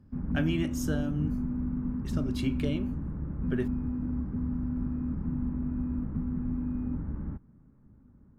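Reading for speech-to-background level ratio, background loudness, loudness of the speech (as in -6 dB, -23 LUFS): -1.5 dB, -33.0 LUFS, -34.5 LUFS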